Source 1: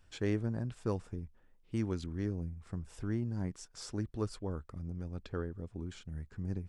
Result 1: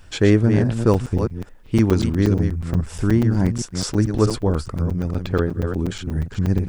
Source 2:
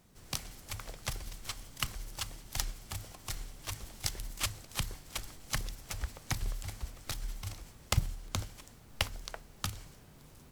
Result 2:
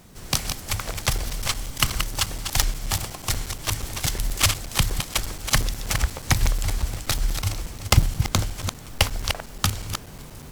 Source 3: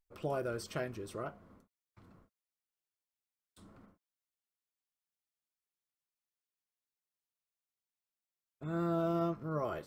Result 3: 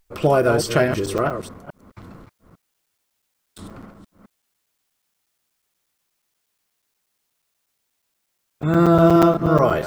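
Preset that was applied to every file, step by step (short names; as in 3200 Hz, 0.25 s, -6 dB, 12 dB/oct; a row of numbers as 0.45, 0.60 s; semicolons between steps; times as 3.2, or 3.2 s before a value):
reverse delay 0.213 s, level -7.5 dB; soft clip -17.5 dBFS; crackling interface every 0.12 s, samples 256, zero, from 0.94; normalise peaks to -3 dBFS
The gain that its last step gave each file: +18.0, +14.5, +19.5 dB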